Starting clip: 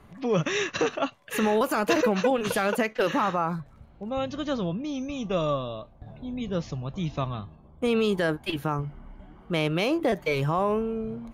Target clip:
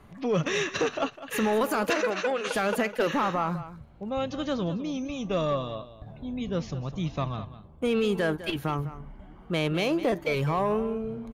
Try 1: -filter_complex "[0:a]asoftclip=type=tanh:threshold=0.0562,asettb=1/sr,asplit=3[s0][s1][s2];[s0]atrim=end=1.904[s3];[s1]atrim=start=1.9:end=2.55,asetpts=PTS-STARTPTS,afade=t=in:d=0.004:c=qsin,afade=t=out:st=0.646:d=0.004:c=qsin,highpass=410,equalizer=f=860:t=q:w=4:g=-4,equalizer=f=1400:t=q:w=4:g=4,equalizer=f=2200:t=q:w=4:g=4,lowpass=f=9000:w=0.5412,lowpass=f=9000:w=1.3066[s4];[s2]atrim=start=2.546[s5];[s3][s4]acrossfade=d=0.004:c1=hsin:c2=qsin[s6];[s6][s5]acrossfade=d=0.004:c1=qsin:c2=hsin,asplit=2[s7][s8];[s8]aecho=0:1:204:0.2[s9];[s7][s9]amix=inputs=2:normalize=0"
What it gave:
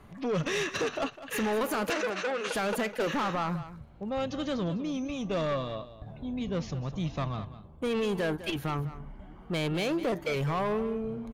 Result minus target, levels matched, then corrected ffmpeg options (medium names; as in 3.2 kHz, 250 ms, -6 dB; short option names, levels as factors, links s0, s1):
saturation: distortion +10 dB
-filter_complex "[0:a]asoftclip=type=tanh:threshold=0.15,asettb=1/sr,asplit=3[s0][s1][s2];[s0]atrim=end=1.904[s3];[s1]atrim=start=1.9:end=2.55,asetpts=PTS-STARTPTS,afade=t=in:d=0.004:c=qsin,afade=t=out:st=0.646:d=0.004:c=qsin,highpass=410,equalizer=f=860:t=q:w=4:g=-4,equalizer=f=1400:t=q:w=4:g=4,equalizer=f=2200:t=q:w=4:g=4,lowpass=f=9000:w=0.5412,lowpass=f=9000:w=1.3066[s4];[s2]atrim=start=2.546[s5];[s3][s4]acrossfade=d=0.004:c1=hsin:c2=qsin[s6];[s6][s5]acrossfade=d=0.004:c1=qsin:c2=hsin,asplit=2[s7][s8];[s8]aecho=0:1:204:0.2[s9];[s7][s9]amix=inputs=2:normalize=0"